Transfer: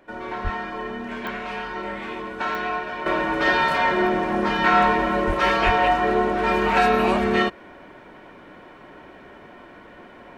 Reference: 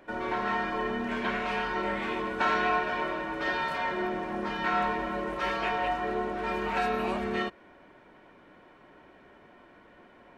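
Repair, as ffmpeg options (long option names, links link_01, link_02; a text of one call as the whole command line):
ffmpeg -i in.wav -filter_complex "[0:a]adeclick=threshold=4,asplit=3[link_01][link_02][link_03];[link_01]afade=type=out:start_time=0.43:duration=0.02[link_04];[link_02]highpass=frequency=140:width=0.5412,highpass=frequency=140:width=1.3066,afade=type=in:start_time=0.43:duration=0.02,afade=type=out:start_time=0.55:duration=0.02[link_05];[link_03]afade=type=in:start_time=0.55:duration=0.02[link_06];[link_04][link_05][link_06]amix=inputs=3:normalize=0,asplit=3[link_07][link_08][link_09];[link_07]afade=type=out:start_time=5.26:duration=0.02[link_10];[link_08]highpass=frequency=140:width=0.5412,highpass=frequency=140:width=1.3066,afade=type=in:start_time=5.26:duration=0.02,afade=type=out:start_time=5.38:duration=0.02[link_11];[link_09]afade=type=in:start_time=5.38:duration=0.02[link_12];[link_10][link_11][link_12]amix=inputs=3:normalize=0,asplit=3[link_13][link_14][link_15];[link_13]afade=type=out:start_time=5.65:duration=0.02[link_16];[link_14]highpass=frequency=140:width=0.5412,highpass=frequency=140:width=1.3066,afade=type=in:start_time=5.65:duration=0.02,afade=type=out:start_time=5.77:duration=0.02[link_17];[link_15]afade=type=in:start_time=5.77:duration=0.02[link_18];[link_16][link_17][link_18]amix=inputs=3:normalize=0,asetnsamples=nb_out_samples=441:pad=0,asendcmd='3.06 volume volume -10.5dB',volume=0dB" out.wav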